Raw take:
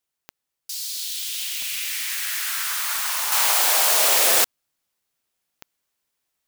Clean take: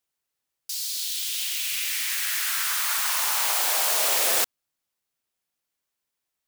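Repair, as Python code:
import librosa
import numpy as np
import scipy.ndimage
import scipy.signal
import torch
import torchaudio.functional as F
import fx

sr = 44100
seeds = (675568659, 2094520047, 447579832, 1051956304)

y = fx.fix_declick_ar(x, sr, threshold=10.0)
y = fx.fix_level(y, sr, at_s=3.32, step_db=-5.0)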